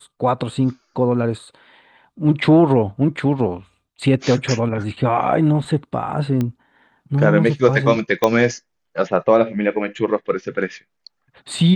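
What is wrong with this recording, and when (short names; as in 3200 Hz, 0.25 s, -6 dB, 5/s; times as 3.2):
6.41 pop -11 dBFS
8.24 pop -3 dBFS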